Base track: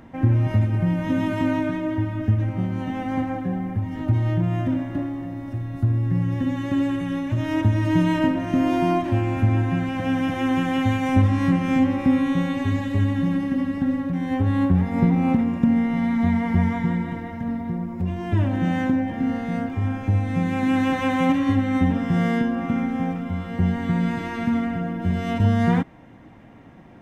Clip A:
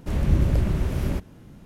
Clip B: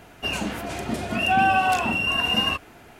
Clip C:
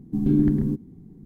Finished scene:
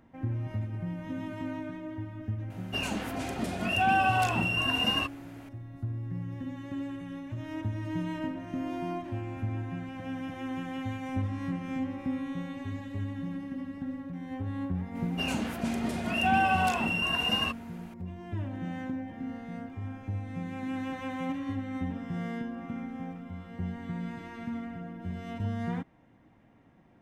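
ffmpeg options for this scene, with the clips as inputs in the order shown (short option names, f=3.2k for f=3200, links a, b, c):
-filter_complex "[2:a]asplit=2[a][b];[0:a]volume=-14dB[c];[a]atrim=end=2.99,asetpts=PTS-STARTPTS,volume=-5.5dB,afade=t=in:d=0.004:c=hsin,afade=t=out:st=2.986:d=0.004:c=hsin,adelay=2500[d];[b]atrim=end=2.99,asetpts=PTS-STARTPTS,volume=-6dB,afade=t=in:d=0.004:c=hsin,afade=t=out:st=2.986:d=0.004:c=hsin,adelay=14950[e];[c][d][e]amix=inputs=3:normalize=0"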